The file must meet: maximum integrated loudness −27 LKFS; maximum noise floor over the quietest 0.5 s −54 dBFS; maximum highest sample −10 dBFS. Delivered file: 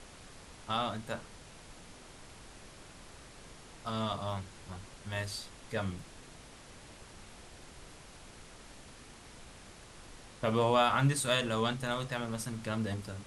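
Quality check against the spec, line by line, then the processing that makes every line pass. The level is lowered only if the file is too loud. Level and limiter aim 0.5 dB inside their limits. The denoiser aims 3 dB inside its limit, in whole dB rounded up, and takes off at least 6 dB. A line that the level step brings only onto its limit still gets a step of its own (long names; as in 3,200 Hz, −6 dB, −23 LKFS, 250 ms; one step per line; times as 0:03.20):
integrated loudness −33.5 LKFS: in spec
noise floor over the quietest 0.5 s −52 dBFS: out of spec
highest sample −14.0 dBFS: in spec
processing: broadband denoise 6 dB, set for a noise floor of −52 dBFS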